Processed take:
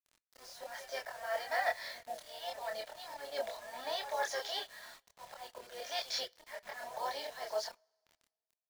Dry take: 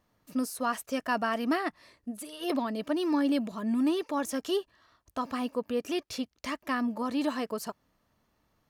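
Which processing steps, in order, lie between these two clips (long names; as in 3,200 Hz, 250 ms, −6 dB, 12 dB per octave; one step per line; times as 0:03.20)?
elliptic band-pass filter 600–8,000 Hz, stop band 50 dB
reversed playback
downward compressor 4 to 1, threshold −47 dBFS, peak gain reduction 18 dB
reversed playback
volume swells 316 ms
phaser with its sweep stopped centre 1,800 Hz, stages 8
pitch-shifted copies added −5 semitones −15 dB, +4 semitones −17 dB
echo ahead of the sound 139 ms −14.5 dB
log-companded quantiser 6 bits
multi-voice chorus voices 4, 0.55 Hz, delay 26 ms, depth 2.5 ms
on a send at −17 dB: convolution reverb, pre-delay 3 ms
on the sum: level +17.5 dB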